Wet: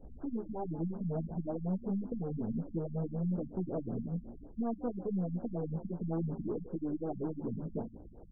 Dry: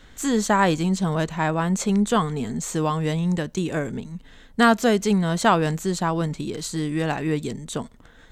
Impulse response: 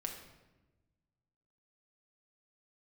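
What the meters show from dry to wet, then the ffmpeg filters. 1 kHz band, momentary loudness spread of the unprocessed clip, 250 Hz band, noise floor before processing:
−24.0 dB, 12 LU, −12.5 dB, −50 dBFS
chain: -filter_complex "[0:a]aeval=exprs='if(lt(val(0),0),0.708*val(0),val(0))':channel_layout=same,asuperstop=centerf=1300:order=8:qfactor=1.1,equalizer=frequency=140:width_type=o:width=0.39:gain=-2.5,asplit=2[link_01][link_02];[link_02]acrusher=bits=2:mode=log:mix=0:aa=0.000001,volume=-6dB[link_03];[link_01][link_03]amix=inputs=2:normalize=0,acompressor=threshold=-27dB:ratio=10,flanger=delay=16:depth=2.2:speed=0.58,asoftclip=type=tanh:threshold=-29.5dB,asplit=6[link_04][link_05][link_06][link_07][link_08][link_09];[link_05]adelay=146,afreqshift=62,volume=-15.5dB[link_10];[link_06]adelay=292,afreqshift=124,volume=-21.2dB[link_11];[link_07]adelay=438,afreqshift=186,volume=-26.9dB[link_12];[link_08]adelay=584,afreqshift=248,volume=-32.5dB[link_13];[link_09]adelay=730,afreqshift=310,volume=-38.2dB[link_14];[link_04][link_10][link_11][link_12][link_13][link_14]amix=inputs=6:normalize=0,afftfilt=real='re*lt(b*sr/1024,220*pow(1700/220,0.5+0.5*sin(2*PI*5.4*pts/sr)))':imag='im*lt(b*sr/1024,220*pow(1700/220,0.5+0.5*sin(2*PI*5.4*pts/sr)))':win_size=1024:overlap=0.75,volume=1dB"

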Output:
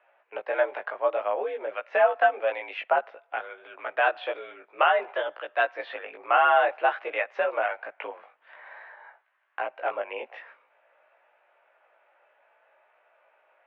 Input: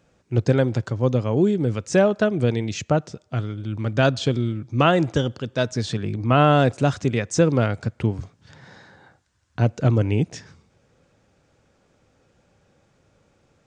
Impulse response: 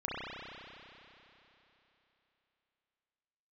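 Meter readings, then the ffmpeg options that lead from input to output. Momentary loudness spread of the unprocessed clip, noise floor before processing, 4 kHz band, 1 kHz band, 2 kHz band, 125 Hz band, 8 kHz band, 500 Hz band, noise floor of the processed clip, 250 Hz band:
9 LU, −64 dBFS, −8.0 dB, +1.5 dB, +2.5 dB, below −40 dB, below −40 dB, −4.5 dB, −67 dBFS, −28.5 dB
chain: -af "flanger=delay=16.5:depth=2.7:speed=0.54,alimiter=limit=-13dB:level=0:latency=1:release=447,highpass=frequency=560:width_type=q:width=0.5412,highpass=frequency=560:width_type=q:width=1.307,lowpass=frequency=2600:width_type=q:width=0.5176,lowpass=frequency=2600:width_type=q:width=0.7071,lowpass=frequency=2600:width_type=q:width=1.932,afreqshift=70,volume=7dB"

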